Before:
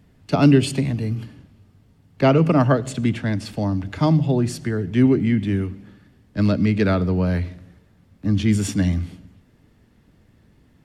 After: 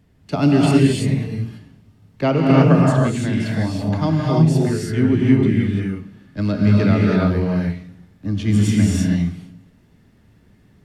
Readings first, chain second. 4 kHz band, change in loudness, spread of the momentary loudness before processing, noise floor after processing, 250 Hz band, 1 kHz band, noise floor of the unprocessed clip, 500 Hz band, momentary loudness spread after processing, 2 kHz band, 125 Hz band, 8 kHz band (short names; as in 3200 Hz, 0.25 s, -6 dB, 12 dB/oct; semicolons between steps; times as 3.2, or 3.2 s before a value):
+2.0 dB, +2.5 dB, 10 LU, -54 dBFS, +3.0 dB, +2.0 dB, -57 dBFS, +1.5 dB, 13 LU, +2.5 dB, +3.5 dB, +2.0 dB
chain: non-linear reverb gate 0.36 s rising, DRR -3.5 dB; gain -3 dB